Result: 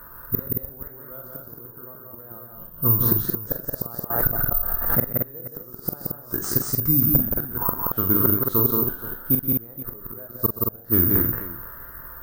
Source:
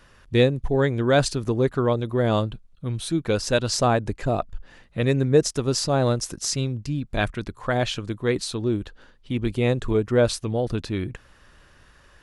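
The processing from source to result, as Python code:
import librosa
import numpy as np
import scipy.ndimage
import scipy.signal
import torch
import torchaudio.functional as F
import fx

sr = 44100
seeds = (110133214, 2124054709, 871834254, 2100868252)

y = fx.spec_trails(x, sr, decay_s=0.41)
y = scipy.signal.sosfilt(scipy.signal.butter(2, 8800.0, 'lowpass', fs=sr, output='sos'), y)
y = fx.high_shelf_res(y, sr, hz=1900.0, db=-12.0, q=3.0)
y = fx.gate_flip(y, sr, shuts_db=-16.0, range_db=-32)
y = fx.wow_flutter(y, sr, seeds[0], rate_hz=2.1, depth_cents=120.0)
y = fx.echo_multitap(y, sr, ms=(43, 127, 175, 224, 476), db=(-7.5, -15.5, -3.0, -4.5, -15.5))
y = (np.kron(y[::3], np.eye(3)[0]) * 3)[:len(y)]
y = fx.pre_swell(y, sr, db_per_s=49.0, at=(4.1, 5.14))
y = y * 10.0 ** (3.0 / 20.0)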